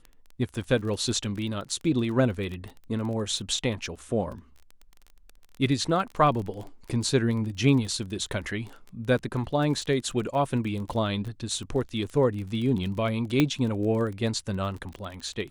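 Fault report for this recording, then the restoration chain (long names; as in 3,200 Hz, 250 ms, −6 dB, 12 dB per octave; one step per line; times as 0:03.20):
surface crackle 25 per second −33 dBFS
0:13.40: click −9 dBFS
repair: click removal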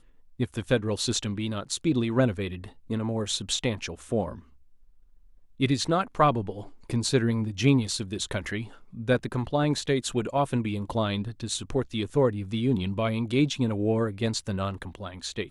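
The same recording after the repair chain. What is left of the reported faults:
none of them is left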